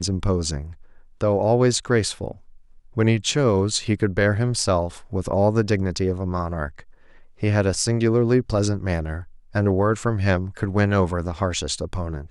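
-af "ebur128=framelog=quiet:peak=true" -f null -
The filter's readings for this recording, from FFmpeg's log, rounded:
Integrated loudness:
  I:         -22.1 LUFS
  Threshold: -32.7 LUFS
Loudness range:
  LRA:         2.1 LU
  Threshold: -42.5 LUFS
  LRA low:   -23.6 LUFS
  LRA high:  -21.5 LUFS
True peak:
  Peak:       -3.8 dBFS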